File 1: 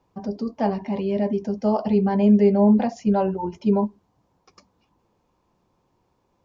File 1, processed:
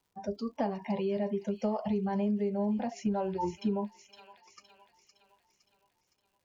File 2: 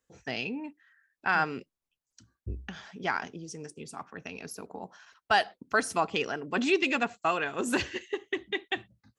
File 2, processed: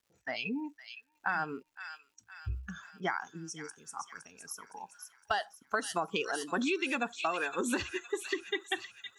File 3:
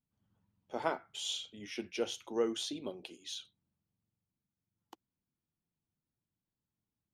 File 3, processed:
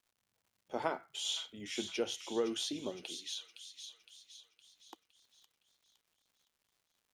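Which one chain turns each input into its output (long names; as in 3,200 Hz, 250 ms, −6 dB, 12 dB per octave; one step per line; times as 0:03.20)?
noise reduction from a noise print of the clip's start 17 dB
delay with a high-pass on its return 513 ms, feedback 49%, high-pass 3,000 Hz, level −6 dB
downward compressor 8 to 1, threshold −29 dBFS
surface crackle 260 per second −64 dBFS
level +1 dB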